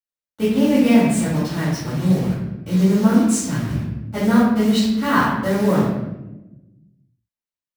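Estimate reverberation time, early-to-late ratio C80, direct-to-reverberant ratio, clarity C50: 1.0 s, 3.5 dB, −13.5 dB, −0.5 dB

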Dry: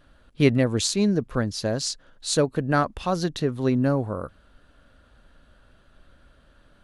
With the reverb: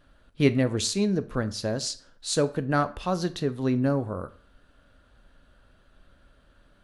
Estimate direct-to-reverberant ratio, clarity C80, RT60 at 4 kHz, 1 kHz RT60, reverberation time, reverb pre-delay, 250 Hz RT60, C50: 11.5 dB, 21.5 dB, 0.40 s, 0.45 s, 0.45 s, 8 ms, 0.45 s, 17.5 dB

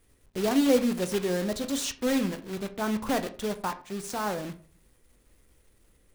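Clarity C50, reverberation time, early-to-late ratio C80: 15.5 dB, 0.45 s, 19.5 dB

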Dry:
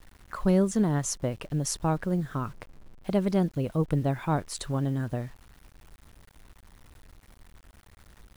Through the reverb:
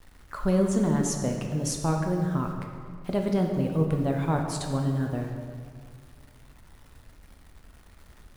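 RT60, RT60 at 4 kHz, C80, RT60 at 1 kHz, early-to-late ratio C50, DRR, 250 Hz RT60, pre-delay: 2.1 s, 1.3 s, 5.5 dB, 2.0 s, 4.0 dB, 2.0 dB, 2.3 s, 5 ms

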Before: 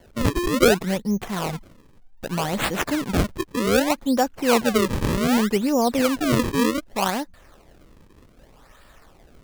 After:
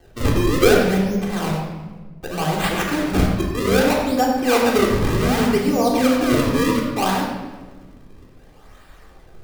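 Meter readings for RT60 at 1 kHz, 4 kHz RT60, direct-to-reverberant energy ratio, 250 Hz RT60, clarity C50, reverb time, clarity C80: 1.2 s, 0.90 s, −3.5 dB, 1.9 s, 2.0 dB, 1.3 s, 4.0 dB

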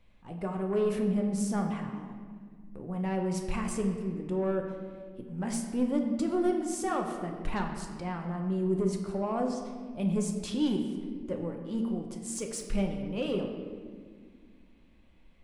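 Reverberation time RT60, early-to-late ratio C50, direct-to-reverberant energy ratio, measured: 1.8 s, 5.0 dB, 2.0 dB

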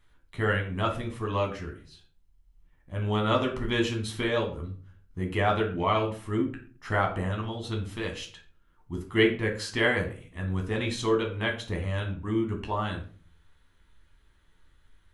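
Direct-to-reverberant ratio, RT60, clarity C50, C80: 1.0 dB, 0.40 s, 9.5 dB, 14.0 dB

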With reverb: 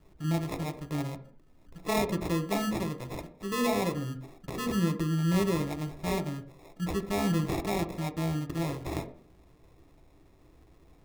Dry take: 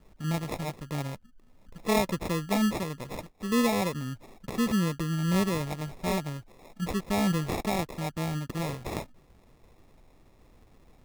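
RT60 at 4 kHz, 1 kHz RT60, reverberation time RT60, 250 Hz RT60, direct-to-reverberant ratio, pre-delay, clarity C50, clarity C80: 0.55 s, 0.55 s, 0.55 s, 0.60 s, 7.0 dB, 3 ms, 12.5 dB, 17.0 dB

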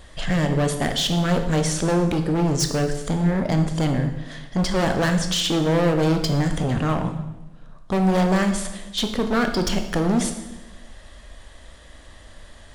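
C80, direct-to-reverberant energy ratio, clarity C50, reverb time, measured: 10.5 dB, 5.5 dB, 8.5 dB, 1.1 s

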